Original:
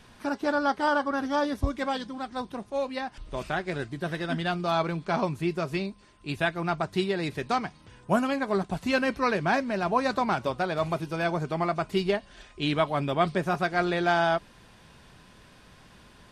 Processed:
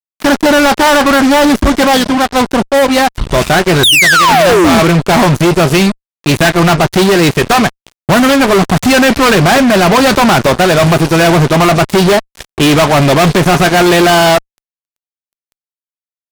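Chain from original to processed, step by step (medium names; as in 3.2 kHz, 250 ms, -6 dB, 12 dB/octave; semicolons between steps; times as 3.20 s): painted sound fall, 3.83–4.80 s, 200–3900 Hz -24 dBFS; fuzz box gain 39 dB, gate -42 dBFS; trim +7.5 dB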